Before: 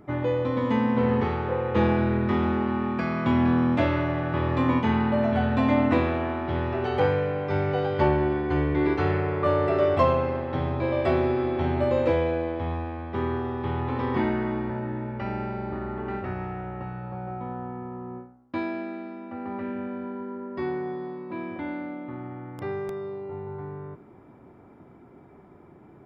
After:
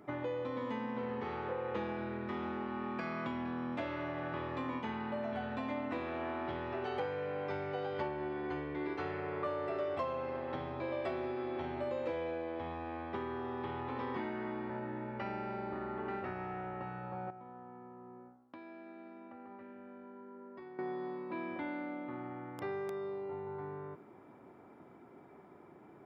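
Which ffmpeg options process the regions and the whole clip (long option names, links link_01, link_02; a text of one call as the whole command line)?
ffmpeg -i in.wav -filter_complex "[0:a]asettb=1/sr,asplit=3[link_01][link_02][link_03];[link_01]atrim=end=17.304[link_04];[link_02]atrim=start=17.3:end=20.79,asetpts=PTS-STARTPTS,afade=type=in:duration=0.004:curve=qsin,afade=type=out:start_time=3.486:duration=0.004:curve=qsin,highshelf=frequency=4400:gain=-8.5,acompressor=threshold=-42dB:ratio=10:attack=3.2:release=140:knee=1:detection=peak[link_05];[link_03]atrim=start=20.786[link_06];[link_04][link_05]acrossfade=duration=0.004:curve1=hsin:curve2=qsin[link_07];[link_07][link_06]acrossfade=duration=0.004:curve1=qsin:curve2=hsin,acompressor=threshold=-30dB:ratio=6,highpass=frequency=330:poles=1,volume=-2.5dB" out.wav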